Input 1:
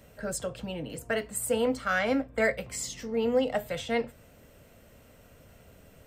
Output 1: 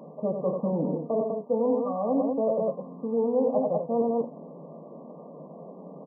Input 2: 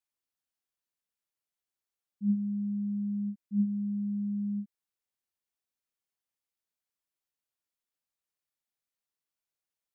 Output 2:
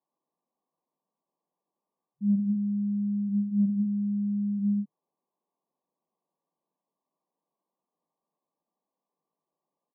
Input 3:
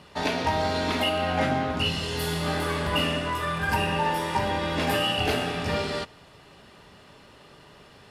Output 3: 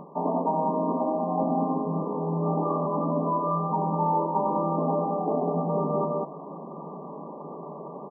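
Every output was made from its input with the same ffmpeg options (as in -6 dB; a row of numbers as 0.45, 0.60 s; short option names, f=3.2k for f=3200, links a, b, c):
-af "acontrast=21,aecho=1:1:90.38|198.3:0.447|0.447,areverse,acompressor=threshold=-32dB:ratio=4,areverse,afftfilt=real='re*between(b*sr/4096,150,1200)':imag='im*between(b*sr/4096,150,1200)':win_size=4096:overlap=0.75,volume=8.5dB"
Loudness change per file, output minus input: +2.5, +4.5, -0.5 LU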